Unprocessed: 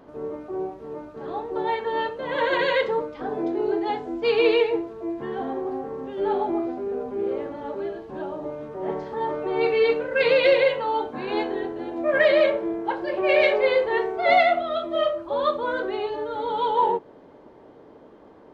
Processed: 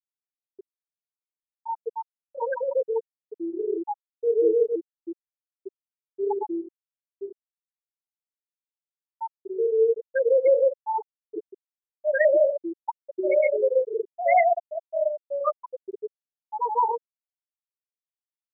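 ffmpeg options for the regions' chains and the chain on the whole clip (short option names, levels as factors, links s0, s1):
-filter_complex "[0:a]asettb=1/sr,asplit=3[s0][s1][s2];[s0]atrim=end=6.874[s3];[s1]atrim=start=6.87:end=7.31,asetpts=PTS-STARTPTS,afade=t=in:d=0.004:c=qsin,afade=t=out:st=0.436:d=0.004:c=qsin,lowpass=1300,equalizer=f=320:t=o:w=0.34:g=-7.5[s4];[s2]atrim=start=7.306[s5];[s3][s4]acrossfade=d=0.004:c1=hsin:c2=qsin[s6];[s6][s5]acrossfade=d=0.004:c1=qsin:c2=hsin,lowpass=2700,afftfilt=real='re*gte(hypot(re,im),0.562)':imag='im*gte(hypot(re,im),0.562)':win_size=1024:overlap=0.75"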